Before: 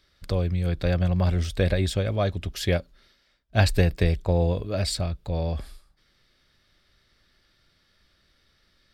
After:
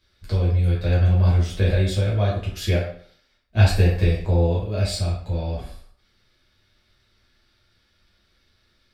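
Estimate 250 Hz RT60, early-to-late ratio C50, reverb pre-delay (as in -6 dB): 0.50 s, 3.5 dB, 6 ms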